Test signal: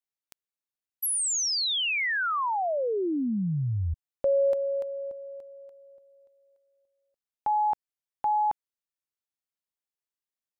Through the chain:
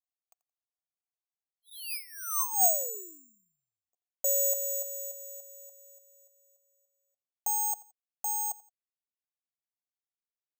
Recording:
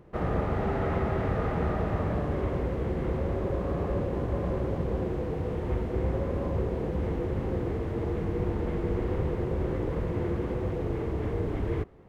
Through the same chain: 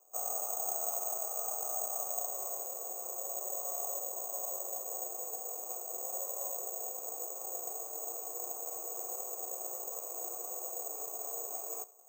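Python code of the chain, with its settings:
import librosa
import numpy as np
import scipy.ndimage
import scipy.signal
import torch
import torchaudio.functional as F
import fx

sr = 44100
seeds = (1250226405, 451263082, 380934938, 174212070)

p1 = scipy.signal.sosfilt(scipy.signal.butter(4, 420.0, 'highpass', fs=sr, output='sos'), x)
p2 = fx.high_shelf(p1, sr, hz=2200.0, db=-11.5)
p3 = fx.rider(p2, sr, range_db=3, speed_s=2.0)
p4 = fx.vowel_filter(p3, sr, vowel='a')
p5 = p4 + fx.echo_feedback(p4, sr, ms=86, feedback_pct=29, wet_db=-20.5, dry=0)
y = (np.kron(scipy.signal.resample_poly(p5, 1, 6), np.eye(6)[0]) * 6)[:len(p5)]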